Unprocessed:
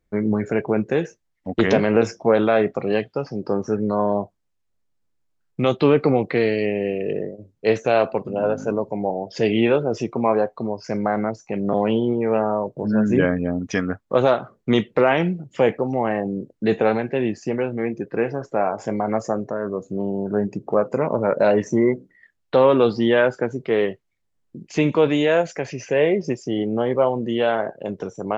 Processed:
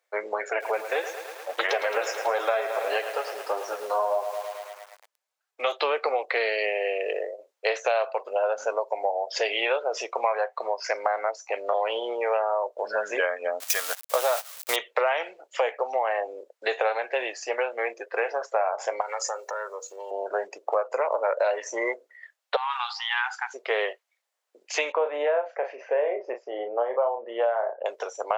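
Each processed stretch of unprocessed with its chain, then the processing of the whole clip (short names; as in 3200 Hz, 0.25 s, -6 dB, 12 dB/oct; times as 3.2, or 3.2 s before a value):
0.49–5.72 flange 1.6 Hz, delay 2.3 ms, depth 3.5 ms, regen -3% + lo-fi delay 0.109 s, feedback 80%, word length 7-bit, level -12 dB
10.26–10.93 bell 1900 Hz +7.5 dB 0.98 oct + de-hum 48.99 Hz, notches 3
13.6–14.76 switching spikes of -14 dBFS + gate -26 dBFS, range -16 dB
19.01–20.11 tilt +4 dB/oct + comb 2.2 ms + compressor 2.5:1, threshold -34 dBFS
22.56–23.54 compressor 10:1, threshold -16 dBFS + brick-wall FIR high-pass 740 Hz
24.92–27.86 LPF 1100 Hz + doubler 34 ms -7.5 dB
whole clip: steep high-pass 540 Hz 36 dB/oct; compressor 5:1, threshold -28 dBFS; gain +6 dB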